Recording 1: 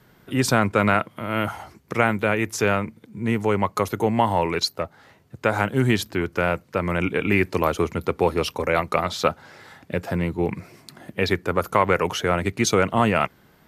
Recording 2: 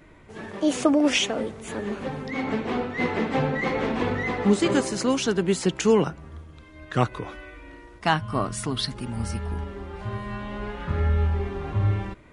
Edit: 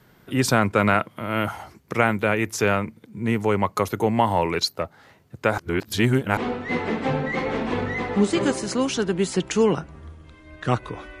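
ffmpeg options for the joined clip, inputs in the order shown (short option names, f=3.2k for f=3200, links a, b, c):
-filter_complex "[0:a]apad=whole_dur=11.2,atrim=end=11.2,asplit=2[a][b];[a]atrim=end=5.582[c];[b]atrim=start=5.578:end=6.372,asetpts=PTS-STARTPTS,areverse[d];[1:a]atrim=start=2.658:end=7.49[e];[c][d]acrossfade=d=0.004:c1=hsin:c2=hsin[f];[f][e]acrossfade=d=0.004:c1=hsin:c2=hsin"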